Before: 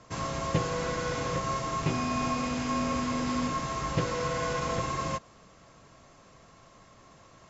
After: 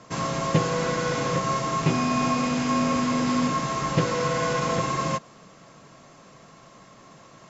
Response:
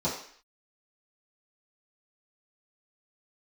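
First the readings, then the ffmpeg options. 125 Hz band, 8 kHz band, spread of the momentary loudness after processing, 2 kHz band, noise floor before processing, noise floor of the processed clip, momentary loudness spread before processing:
+5.5 dB, can't be measured, 3 LU, +5.5 dB, −56 dBFS, −51 dBFS, 2 LU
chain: -af "lowshelf=frequency=110:width_type=q:width=1.5:gain=-9,volume=5.5dB"

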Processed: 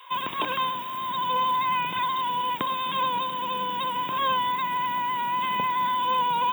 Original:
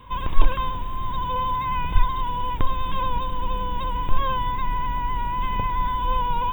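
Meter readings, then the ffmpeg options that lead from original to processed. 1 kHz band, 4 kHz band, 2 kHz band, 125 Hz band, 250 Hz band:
+1.0 dB, +6.0 dB, +3.5 dB, −15.0 dB, −3.0 dB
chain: -filter_complex "[0:a]highpass=frequency=170:width=0.5412,highpass=frequency=170:width=1.3066,highshelf=frequency=2600:gain=10,acrossover=split=600|1600[link_01][link_02][link_03];[link_01]aeval=exprs='sgn(val(0))*max(abs(val(0))-0.00316,0)':channel_layout=same[link_04];[link_04][link_02][link_03]amix=inputs=3:normalize=0"

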